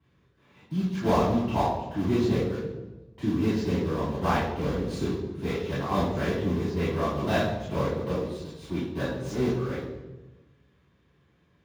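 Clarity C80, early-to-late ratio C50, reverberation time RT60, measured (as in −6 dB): 4.0 dB, 1.0 dB, 1.2 s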